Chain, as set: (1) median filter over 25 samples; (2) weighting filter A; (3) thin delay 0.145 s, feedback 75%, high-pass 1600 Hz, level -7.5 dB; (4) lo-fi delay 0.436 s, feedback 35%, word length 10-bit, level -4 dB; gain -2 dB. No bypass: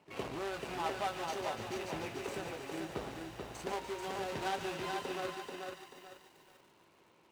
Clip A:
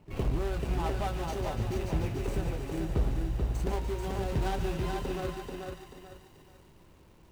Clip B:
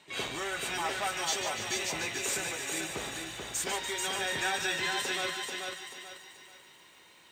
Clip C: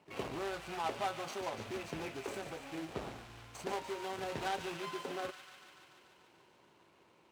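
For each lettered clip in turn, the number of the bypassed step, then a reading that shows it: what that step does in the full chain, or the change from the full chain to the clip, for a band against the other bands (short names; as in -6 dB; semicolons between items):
2, 125 Hz band +17.5 dB; 1, 8 kHz band +16.0 dB; 4, momentary loudness spread change +5 LU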